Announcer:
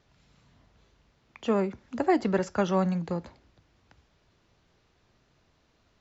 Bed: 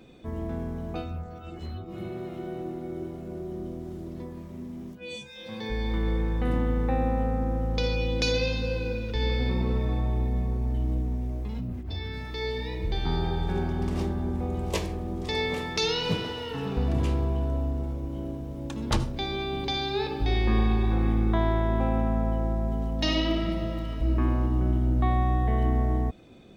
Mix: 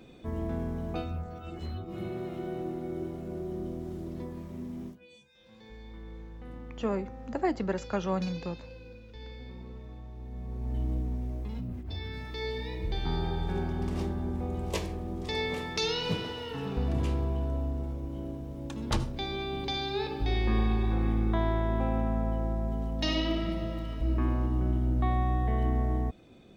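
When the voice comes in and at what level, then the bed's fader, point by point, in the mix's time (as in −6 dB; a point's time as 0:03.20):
5.35 s, −5.0 dB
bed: 0:04.87 −0.5 dB
0:05.08 −18 dB
0:10.15 −18 dB
0:10.78 −3.5 dB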